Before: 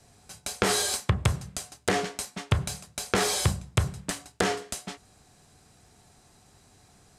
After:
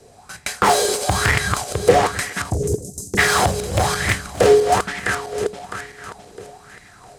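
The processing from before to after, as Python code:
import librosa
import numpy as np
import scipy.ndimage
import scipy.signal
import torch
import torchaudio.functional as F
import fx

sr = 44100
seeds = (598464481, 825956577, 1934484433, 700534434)

y = fx.reverse_delay_fb(x, sr, ms=329, feedback_pct=60, wet_db=-4)
y = fx.cheby1_bandstop(y, sr, low_hz=390.0, high_hz=6400.0, order=3, at=(2.49, 3.17), fade=0.02)
y = np.clip(10.0 ** (21.0 / 20.0) * y, -1.0, 1.0) / 10.0 ** (21.0 / 20.0)
y = y + 10.0 ** (-16.5 / 20.0) * np.pad(y, (int(262 * sr / 1000.0), 0))[:len(y)]
y = fx.bell_lfo(y, sr, hz=1.1, low_hz=420.0, high_hz=2000.0, db=17)
y = y * librosa.db_to_amplitude(5.0)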